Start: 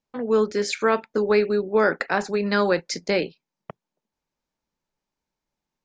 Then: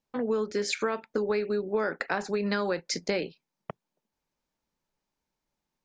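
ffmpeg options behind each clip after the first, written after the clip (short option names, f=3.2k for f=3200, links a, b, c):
-af "acompressor=threshold=-25dB:ratio=6"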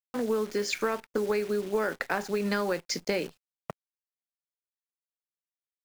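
-af "aeval=exprs='0.237*(cos(1*acos(clip(val(0)/0.237,-1,1)))-cos(1*PI/2))+0.0106*(cos(6*acos(clip(val(0)/0.237,-1,1)))-cos(6*PI/2))+0.0015*(cos(7*acos(clip(val(0)/0.237,-1,1)))-cos(7*PI/2))+0.00668*(cos(8*acos(clip(val(0)/0.237,-1,1)))-cos(8*PI/2))':c=same,bandreject=f=3.9k:w=17,acrusher=bits=8:dc=4:mix=0:aa=0.000001"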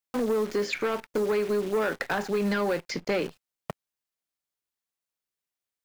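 -filter_complex "[0:a]acrossover=split=3600[a][b];[a]asoftclip=type=tanh:threshold=-26dB[c];[b]acompressor=threshold=-51dB:ratio=6[d];[c][d]amix=inputs=2:normalize=0,volume=5.5dB"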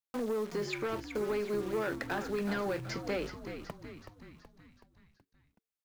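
-filter_complex "[0:a]asplit=7[a][b][c][d][e][f][g];[b]adelay=375,afreqshift=-75,volume=-9dB[h];[c]adelay=750,afreqshift=-150,volume=-14.2dB[i];[d]adelay=1125,afreqshift=-225,volume=-19.4dB[j];[e]adelay=1500,afreqshift=-300,volume=-24.6dB[k];[f]adelay=1875,afreqshift=-375,volume=-29.8dB[l];[g]adelay=2250,afreqshift=-450,volume=-35dB[m];[a][h][i][j][k][l][m]amix=inputs=7:normalize=0,volume=-7.5dB"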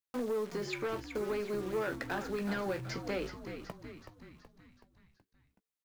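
-filter_complex "[0:a]asplit=2[a][b];[b]adelay=16,volume=-12dB[c];[a][c]amix=inputs=2:normalize=0,volume=-1.5dB"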